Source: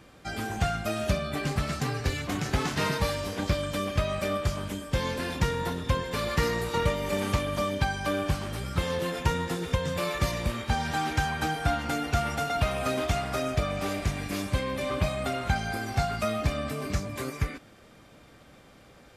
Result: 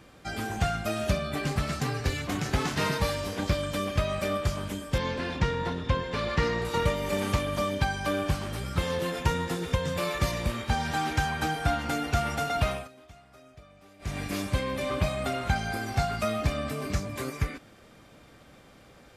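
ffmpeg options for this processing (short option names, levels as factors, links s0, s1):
-filter_complex "[0:a]asettb=1/sr,asplit=3[s0][s1][s2];[s0]atrim=end=4.984[s3];[s1]atrim=start=4.98:end=6.65,asetpts=PTS-STARTPTS,afade=t=in:d=0.004:c=qsin,afade=t=out:st=1.666:d=0.004:c=qsin,lowpass=4700[s4];[s2]atrim=start=6.646[s5];[s3][s4]acrossfade=d=0.004:c1=hsin:c2=qsin[s6];[s6][s5]acrossfade=d=0.004:c1=qsin:c2=hsin,asplit=3[s7][s8][s9];[s7]atrim=end=12.88,asetpts=PTS-STARTPTS,afade=t=out:st=12.7:d=0.18:silence=0.0630957[s10];[s8]atrim=start=12.88:end=13.99,asetpts=PTS-STARTPTS,volume=0.0631[s11];[s9]atrim=start=13.99,asetpts=PTS-STARTPTS,afade=t=in:d=0.18:silence=0.0630957[s12];[s10][s11][s12]concat=n=3:v=0:a=1"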